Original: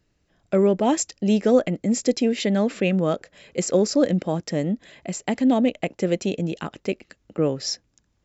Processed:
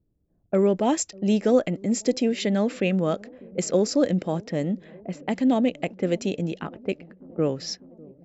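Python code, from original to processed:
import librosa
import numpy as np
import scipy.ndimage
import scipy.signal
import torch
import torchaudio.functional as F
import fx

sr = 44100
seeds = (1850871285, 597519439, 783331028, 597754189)

y = fx.env_lowpass(x, sr, base_hz=390.0, full_db=-20.0)
y = fx.echo_wet_lowpass(y, sr, ms=597, feedback_pct=72, hz=530.0, wet_db=-22.5)
y = y * 10.0 ** (-2.0 / 20.0)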